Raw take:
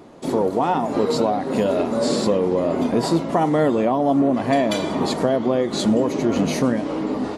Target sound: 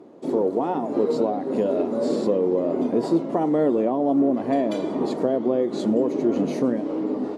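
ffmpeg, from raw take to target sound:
-af "crystalizer=i=5:c=0,acrusher=bits=7:mode=log:mix=0:aa=0.000001,bandpass=f=360:t=q:w=1.3:csg=0"

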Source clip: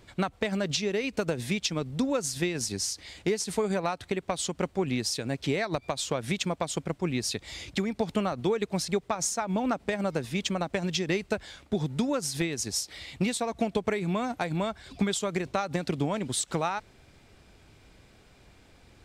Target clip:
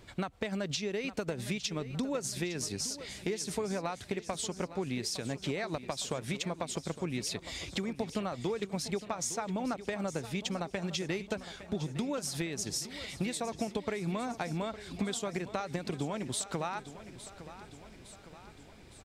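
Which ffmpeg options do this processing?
-filter_complex "[0:a]acompressor=threshold=-36dB:ratio=2,asplit=2[a][b];[b]aecho=0:1:860|1720|2580|3440|4300|5160:0.2|0.114|0.0648|0.037|0.0211|0.012[c];[a][c]amix=inputs=2:normalize=0"

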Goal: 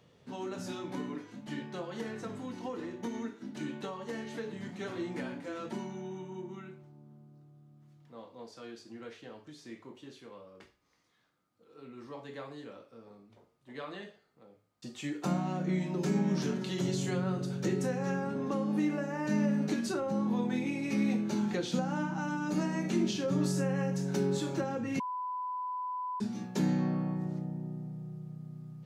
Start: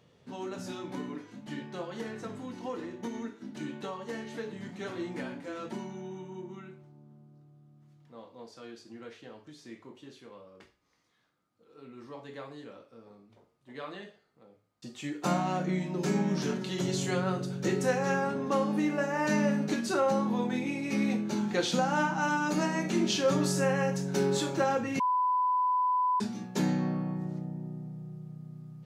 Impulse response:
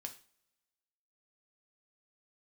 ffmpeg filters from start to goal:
-filter_complex "[0:a]acrossover=split=360[a][b];[b]acompressor=threshold=-38dB:ratio=4[c];[a][c]amix=inputs=2:normalize=0"

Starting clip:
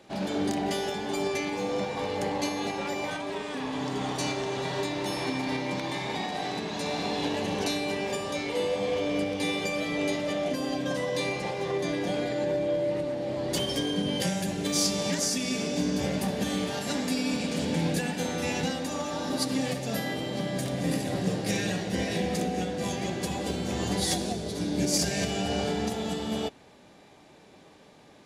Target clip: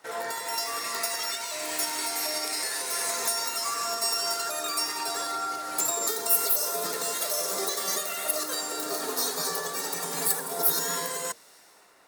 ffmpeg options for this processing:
-filter_complex "[0:a]bandreject=f=50:t=h:w=6,bandreject=f=100:t=h:w=6,bandreject=f=150:t=h:w=6,bandreject=f=200:t=h:w=6,bandreject=f=250:t=h:w=6,acrossover=split=830|1500[a][b][c];[c]dynaudnorm=f=190:g=11:m=11.5dB[d];[a][b][d]amix=inputs=3:normalize=0,asetrate=103194,aresample=44100,lowshelf=f=150:g=-4,volume=-4dB"

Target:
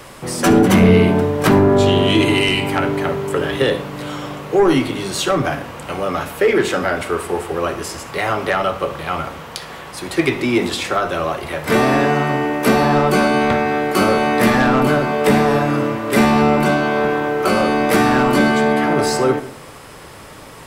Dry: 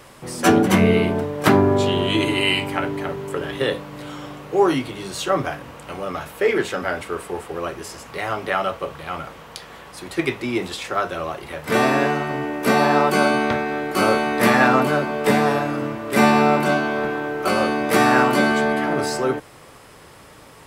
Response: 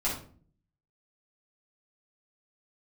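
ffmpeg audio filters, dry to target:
-filter_complex "[0:a]aeval=exprs='0.891*(cos(1*acos(clip(val(0)/0.891,-1,1)))-cos(1*PI/2))+0.224*(cos(5*acos(clip(val(0)/0.891,-1,1)))-cos(5*PI/2))':c=same,acrossover=split=390[a][b];[b]acompressor=threshold=-15dB:ratio=6[c];[a][c]amix=inputs=2:normalize=0,asplit=2[d][e];[1:a]atrim=start_sample=2205,adelay=55[f];[e][f]afir=irnorm=-1:irlink=0,volume=-20dB[g];[d][g]amix=inputs=2:normalize=0"

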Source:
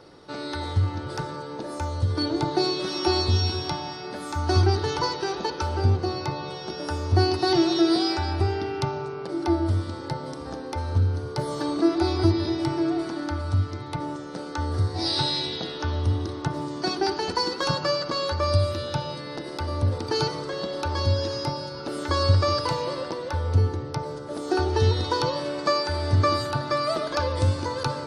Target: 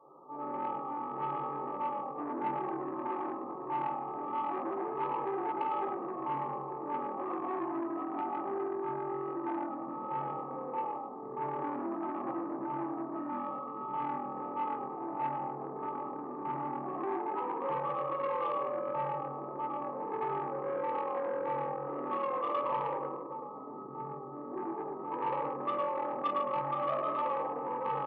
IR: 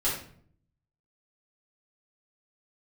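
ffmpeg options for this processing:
-filter_complex "[0:a]asettb=1/sr,asplit=3[a][b][c];[a]atrim=end=22.974[d];[b]atrim=start=22.97:end=25.01,asetpts=PTS-STARTPTS,afade=t=in:d=0.004:c=qsin,afade=t=out:st=2.036:d=0.004:c=qsin,equalizer=f=780:t=o:w=1.8:g=-8.5[e];[c]atrim=start=25.006[f];[d][e]acrossfade=d=0.004:c1=hsin:c2=qsin[g];[g][f]acrossfade=d=0.004:c1=qsin:c2=hsin,asoftclip=type=tanh:threshold=-21.5dB[h];[1:a]atrim=start_sample=2205[i];[h][i]afir=irnorm=-1:irlink=0,asoftclip=type=hard:threshold=-11dB,asplit=6[j][k][l][m][n][o];[k]adelay=109,afreqshift=-43,volume=-3dB[p];[l]adelay=218,afreqshift=-86,volume=-10.7dB[q];[m]adelay=327,afreqshift=-129,volume=-18.5dB[r];[n]adelay=436,afreqshift=-172,volume=-26.2dB[s];[o]adelay=545,afreqshift=-215,volume=-34dB[t];[j][p][q][r][s][t]amix=inputs=6:normalize=0,afftfilt=real='re*between(b*sr/4096,120,1300)':imag='im*between(b*sr/4096,120,1300)':win_size=4096:overlap=0.75,alimiter=limit=-9.5dB:level=0:latency=1:release=189,acontrast=81,aderivative,asplit=2[u][v];[v]adelay=15,volume=-13dB[w];[u][w]amix=inputs=2:normalize=0"

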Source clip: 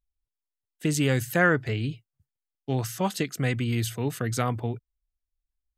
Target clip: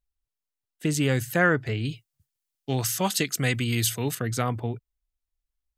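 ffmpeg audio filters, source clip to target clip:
-filter_complex "[0:a]asettb=1/sr,asplit=3[a][b][c];[a]atrim=end=1.854[d];[b]atrim=start=1.85:end=4.15,asetpts=PTS-STARTPTS,afade=t=in:d=0.004:c=qsin,afade=t=out:st=2.296:d=0.004:c=qsin,highshelf=f=2.4k:g=10.5[e];[c]atrim=start=4.146[f];[d][e]acrossfade=d=0.004:c1=hsin:c2=qsin[g];[g][f]acrossfade=d=0.004:c1=qsin:c2=hsin"

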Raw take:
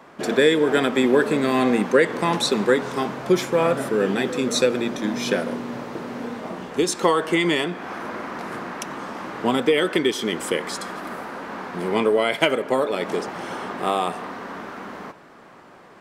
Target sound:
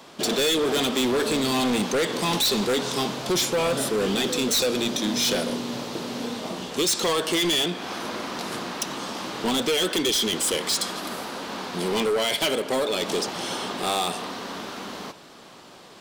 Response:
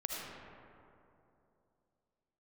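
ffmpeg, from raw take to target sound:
-af "highshelf=f=2.6k:t=q:w=1.5:g=10.5,asoftclip=type=hard:threshold=-20dB"

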